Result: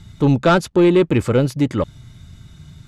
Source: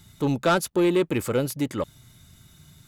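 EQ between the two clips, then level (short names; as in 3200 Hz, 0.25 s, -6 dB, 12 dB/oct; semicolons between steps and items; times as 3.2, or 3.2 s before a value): air absorption 72 m; low shelf 170 Hz +9 dB; +6.0 dB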